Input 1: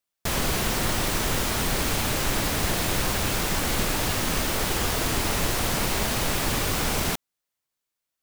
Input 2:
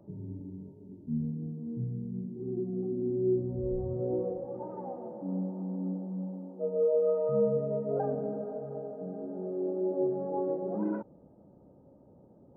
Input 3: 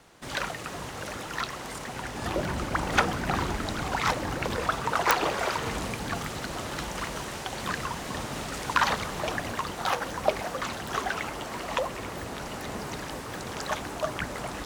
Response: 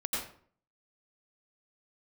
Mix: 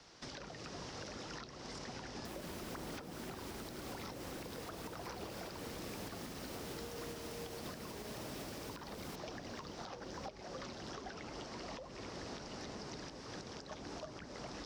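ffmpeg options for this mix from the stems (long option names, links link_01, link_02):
-filter_complex "[0:a]highpass=57,alimiter=limit=-22.5dB:level=0:latency=1:release=314,adelay=2000,volume=-3dB,asplit=2[link_01][link_02];[link_02]volume=-23dB[link_03];[1:a]highpass=frequency=390:width=0.5412,highpass=frequency=390:width=1.3066,asplit=2[link_04][link_05];[link_05]adelay=3.7,afreqshift=-0.43[link_06];[link_04][link_06]amix=inputs=2:normalize=1,volume=-12.5dB[link_07];[2:a]lowpass=frequency=5300:width_type=q:width=3.9,volume=-6dB[link_08];[link_03]aecho=0:1:582|1164|1746|2328|2910|3492:1|0.46|0.212|0.0973|0.0448|0.0206[link_09];[link_01][link_07][link_08][link_09]amix=inputs=4:normalize=0,acrossover=split=200|550[link_10][link_11][link_12];[link_10]acompressor=threshold=-52dB:ratio=4[link_13];[link_11]acompressor=threshold=-44dB:ratio=4[link_14];[link_12]acompressor=threshold=-48dB:ratio=4[link_15];[link_13][link_14][link_15]amix=inputs=3:normalize=0,alimiter=level_in=11dB:limit=-24dB:level=0:latency=1:release=330,volume=-11dB"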